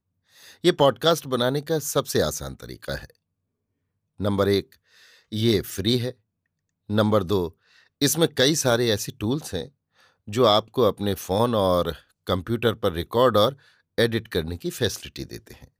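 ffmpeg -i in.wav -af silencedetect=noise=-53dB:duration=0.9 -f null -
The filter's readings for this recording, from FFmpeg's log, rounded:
silence_start: 3.15
silence_end: 4.19 | silence_duration: 1.04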